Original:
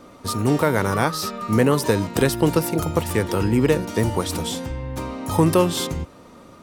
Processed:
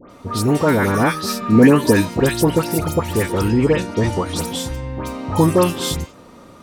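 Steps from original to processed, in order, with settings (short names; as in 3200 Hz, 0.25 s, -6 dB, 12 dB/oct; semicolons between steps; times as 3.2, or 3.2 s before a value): 0.65–2 small resonant body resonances 260/1700/2400 Hz, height 7 dB -> 9 dB, ringing for 25 ms; dispersion highs, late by 0.101 s, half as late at 2000 Hz; 3.48–4.36 LPF 7400 Hz 12 dB/oct; gain +2.5 dB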